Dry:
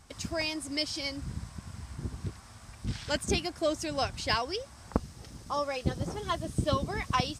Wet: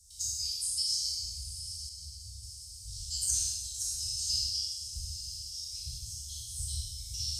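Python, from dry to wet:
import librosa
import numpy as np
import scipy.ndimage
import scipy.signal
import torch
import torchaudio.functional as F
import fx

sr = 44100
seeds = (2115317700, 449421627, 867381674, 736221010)

p1 = fx.spec_trails(x, sr, decay_s=1.0)
p2 = scipy.signal.sosfilt(scipy.signal.cheby2(4, 60, [260.0, 1900.0], 'bandstop', fs=sr, output='sos'), p1)
p3 = fx.tilt_shelf(p2, sr, db=-6.5, hz=660.0)
p4 = p3 + fx.echo_diffused(p3, sr, ms=916, feedback_pct=41, wet_db=-10, dry=0)
p5 = fx.cheby_harmonics(p4, sr, harmonics=(4,), levels_db=(-39,), full_scale_db=-11.5)
p6 = fx.graphic_eq_31(p5, sr, hz=(1600, 3150, 5000), db=(10, -4, -5), at=(3.19, 4.08))
p7 = fx.rev_schroeder(p6, sr, rt60_s=0.79, comb_ms=28, drr_db=1.0)
p8 = fx.ensemble(p7, sr, at=(1.89, 2.43))
y = p8 * librosa.db_to_amplitude(-2.5)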